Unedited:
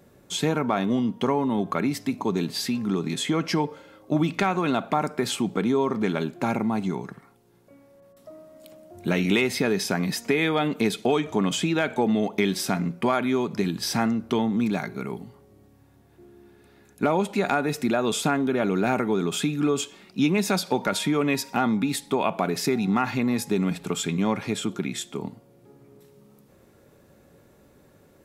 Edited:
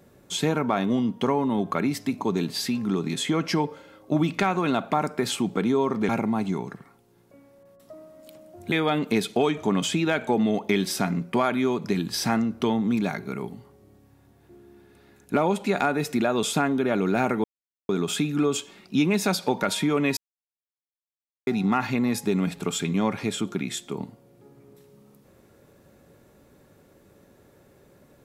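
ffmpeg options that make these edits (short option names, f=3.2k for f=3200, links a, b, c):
-filter_complex "[0:a]asplit=6[a][b][c][d][e][f];[a]atrim=end=6.092[g];[b]atrim=start=6.458:end=9.092[h];[c]atrim=start=10.408:end=19.13,asetpts=PTS-STARTPTS,afade=t=out:st=8.718:d=0.004:c=hsin,apad=pad_dur=0.45[i];[d]atrim=start=19.13:end=21.41,asetpts=PTS-STARTPTS,afade=t=in:d=0.004:c=hsin,afade=t=out:st=2.276:d=0.004:c=hsin[j];[e]atrim=start=21.41:end=22.71,asetpts=PTS-STARTPTS,volume=0[k];[f]atrim=start=22.71,asetpts=PTS-STARTPTS,afade=t=in:d=0.004:c=hsin[l];[g][h]acrossfade=d=0.004:c1=hsin:c2=hsin[m];[i][j][k][l]concat=n=4:v=0:a=1[n];[m][n]acrossfade=d=0.004:c1=hsin:c2=hsin"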